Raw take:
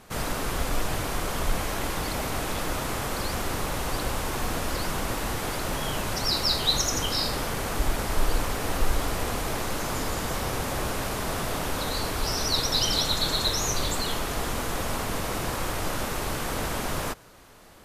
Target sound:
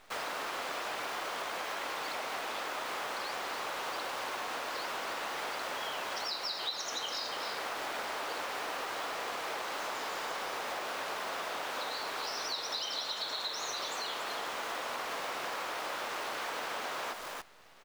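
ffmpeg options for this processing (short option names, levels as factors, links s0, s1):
-af "highpass=600,lowpass=4600,aecho=1:1:283:0.376,acrusher=bits=8:dc=4:mix=0:aa=0.000001,acompressor=threshold=0.02:ratio=6"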